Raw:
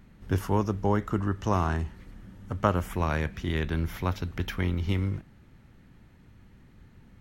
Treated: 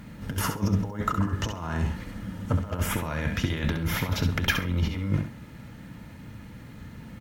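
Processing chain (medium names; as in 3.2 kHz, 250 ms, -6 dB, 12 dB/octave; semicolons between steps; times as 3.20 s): bass shelf 63 Hz -9 dB; compressor with a negative ratio -33 dBFS, ratio -0.5; comb of notches 380 Hz; added noise white -77 dBFS; on a send: feedback delay 67 ms, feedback 18%, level -7.5 dB; on the sum: trim +8 dB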